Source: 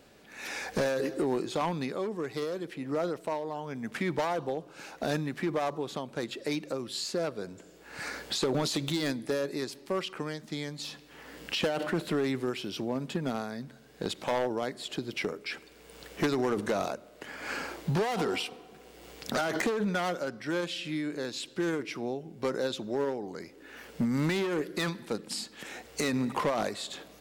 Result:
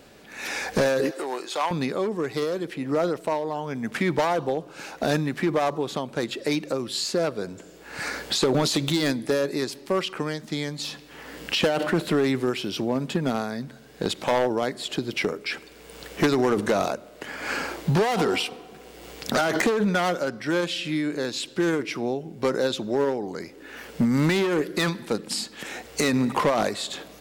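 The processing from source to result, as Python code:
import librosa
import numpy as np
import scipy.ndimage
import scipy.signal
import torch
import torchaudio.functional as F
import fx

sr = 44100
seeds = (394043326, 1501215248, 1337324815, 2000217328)

y = fx.highpass(x, sr, hz=670.0, slope=12, at=(1.11, 1.71))
y = F.gain(torch.from_numpy(y), 7.0).numpy()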